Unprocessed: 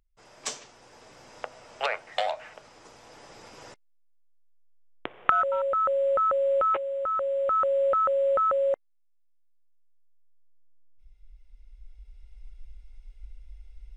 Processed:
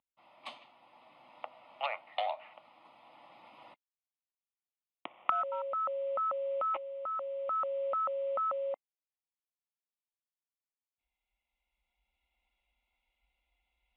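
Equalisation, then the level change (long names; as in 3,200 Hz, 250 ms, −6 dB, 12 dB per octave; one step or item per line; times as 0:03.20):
moving average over 6 samples
Chebyshev high-pass filter 310 Hz, order 2
phaser with its sweep stopped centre 1,600 Hz, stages 6
−2.5 dB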